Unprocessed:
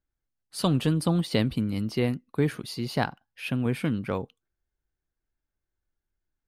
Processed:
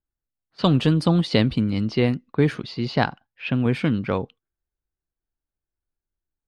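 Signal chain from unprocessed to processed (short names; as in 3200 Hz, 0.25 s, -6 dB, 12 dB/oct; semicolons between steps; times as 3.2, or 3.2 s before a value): low-pass opened by the level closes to 1400 Hz, open at -22 dBFS; gate -51 dBFS, range -9 dB; Chebyshev low-pass 5000 Hz, order 2; gain +6.5 dB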